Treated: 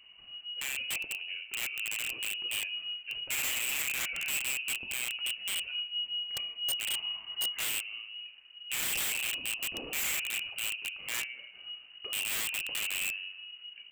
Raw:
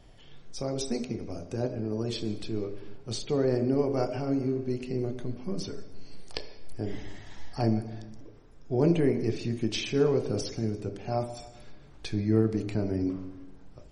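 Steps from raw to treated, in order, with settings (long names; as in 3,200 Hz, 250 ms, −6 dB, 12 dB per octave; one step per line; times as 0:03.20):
voice inversion scrambler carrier 2,900 Hz
wrap-around overflow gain 23 dB
level −4 dB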